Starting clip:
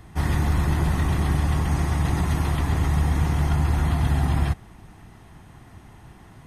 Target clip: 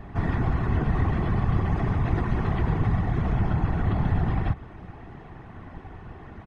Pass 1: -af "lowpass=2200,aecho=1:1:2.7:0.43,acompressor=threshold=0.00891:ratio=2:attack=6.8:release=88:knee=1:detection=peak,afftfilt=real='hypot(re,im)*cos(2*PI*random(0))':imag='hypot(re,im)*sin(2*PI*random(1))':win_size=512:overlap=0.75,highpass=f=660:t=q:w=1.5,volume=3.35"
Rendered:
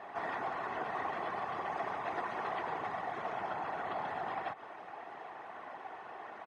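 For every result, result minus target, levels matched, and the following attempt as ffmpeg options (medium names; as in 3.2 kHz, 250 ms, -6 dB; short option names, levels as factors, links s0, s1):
500 Hz band +8.0 dB; compression: peak gain reduction +5 dB
-af "lowpass=2200,aecho=1:1:2.7:0.43,acompressor=threshold=0.00891:ratio=2:attack=6.8:release=88:knee=1:detection=peak,afftfilt=real='hypot(re,im)*cos(2*PI*random(0))':imag='hypot(re,im)*sin(2*PI*random(1))':win_size=512:overlap=0.75,volume=3.35"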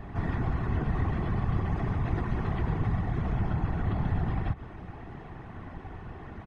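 compression: peak gain reduction +5 dB
-af "lowpass=2200,aecho=1:1:2.7:0.43,acompressor=threshold=0.0266:ratio=2:attack=6.8:release=88:knee=1:detection=peak,afftfilt=real='hypot(re,im)*cos(2*PI*random(0))':imag='hypot(re,im)*sin(2*PI*random(1))':win_size=512:overlap=0.75,volume=3.35"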